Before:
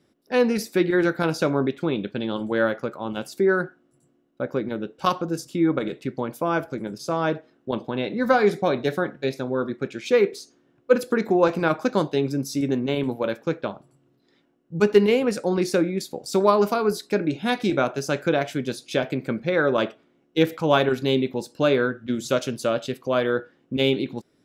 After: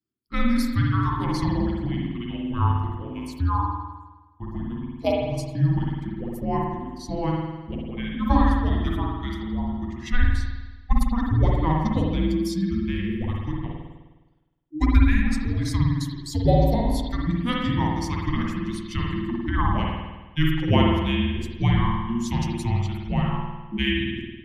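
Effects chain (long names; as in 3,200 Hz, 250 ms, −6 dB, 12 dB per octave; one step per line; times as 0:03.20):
spectral dynamics exaggerated over time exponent 1.5
frequency shifter −470 Hz
spring reverb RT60 1.2 s, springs 51 ms, chirp 35 ms, DRR −2 dB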